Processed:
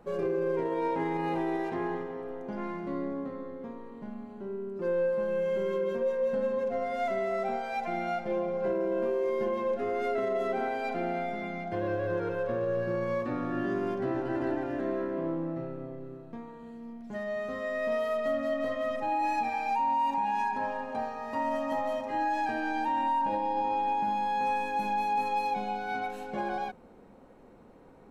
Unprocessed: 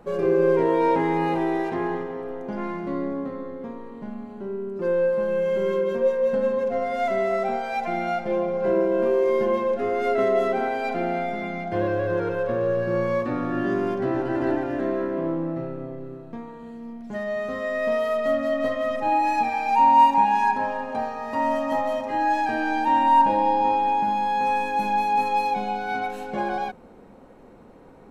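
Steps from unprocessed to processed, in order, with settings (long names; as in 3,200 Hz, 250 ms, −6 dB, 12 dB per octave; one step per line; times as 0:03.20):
brickwall limiter −16 dBFS, peak gain reduction 8.5 dB
level −6 dB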